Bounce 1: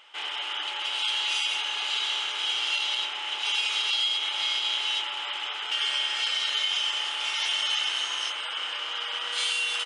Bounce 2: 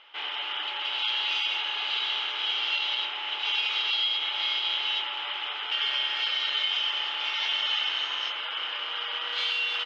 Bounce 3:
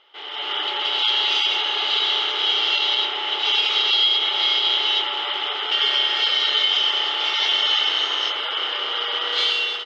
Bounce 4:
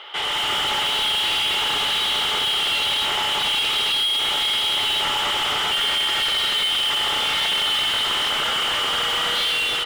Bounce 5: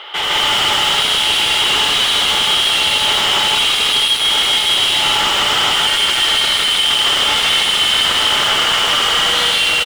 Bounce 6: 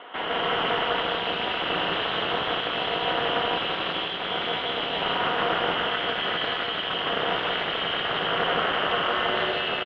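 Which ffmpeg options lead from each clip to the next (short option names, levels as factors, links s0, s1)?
-af "lowpass=f=4200:w=0.5412,lowpass=f=4200:w=1.3066"
-af "equalizer=f=400:t=o:w=0.33:g=9,equalizer=f=1000:t=o:w=0.33:g=-5,equalizer=f=1600:t=o:w=0.33:g=-6,equalizer=f=2500:t=o:w=0.33:g=-10,dynaudnorm=f=260:g=3:m=3.55"
-filter_complex "[0:a]asplit=2[s0][s1];[s1]acrusher=bits=4:mode=log:mix=0:aa=0.000001,volume=0.562[s2];[s0][s2]amix=inputs=2:normalize=0,asplit=2[s3][s4];[s4]highpass=f=720:p=1,volume=28.2,asoftclip=type=tanh:threshold=0.398[s5];[s3][s5]amix=inputs=2:normalize=0,lowpass=f=3100:p=1,volume=0.501,volume=0.473"
-filter_complex "[0:a]asoftclip=type=hard:threshold=0.075,asplit=2[s0][s1];[s1]aecho=0:1:78.72|157.4:0.282|1[s2];[s0][s2]amix=inputs=2:normalize=0,volume=2.11"
-af "highpass=190,equalizer=f=280:t=q:w=4:g=8,equalizer=f=570:t=q:w=4:g=9,equalizer=f=1000:t=q:w=4:g=-5,equalizer=f=2200:t=q:w=4:g=-8,lowpass=f=2400:w=0.5412,lowpass=f=2400:w=1.3066,aeval=exprs='val(0)*sin(2*PI*110*n/s)':c=same,aecho=1:1:177:0.501,volume=0.668"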